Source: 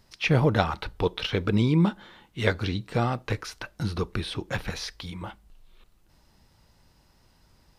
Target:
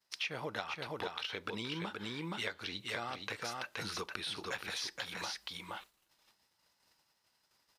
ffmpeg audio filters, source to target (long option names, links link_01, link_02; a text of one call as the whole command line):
ffmpeg -i in.wav -af "aecho=1:1:472:0.501,agate=range=-33dB:threshold=-48dB:ratio=3:detection=peak,highpass=frequency=1300:poles=1,acompressor=threshold=-45dB:ratio=6,volume=7.5dB" out.wav